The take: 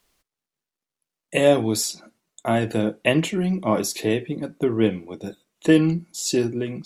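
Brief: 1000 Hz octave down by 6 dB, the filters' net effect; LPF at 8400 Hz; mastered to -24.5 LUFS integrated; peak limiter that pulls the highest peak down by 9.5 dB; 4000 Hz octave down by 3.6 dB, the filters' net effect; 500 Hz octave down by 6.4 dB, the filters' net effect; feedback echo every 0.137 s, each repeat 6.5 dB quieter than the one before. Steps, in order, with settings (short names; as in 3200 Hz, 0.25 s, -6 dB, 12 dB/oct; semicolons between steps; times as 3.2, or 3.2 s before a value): LPF 8400 Hz; bell 500 Hz -7 dB; bell 1000 Hz -5 dB; bell 4000 Hz -4.5 dB; limiter -16.5 dBFS; feedback echo 0.137 s, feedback 47%, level -6.5 dB; gain +3 dB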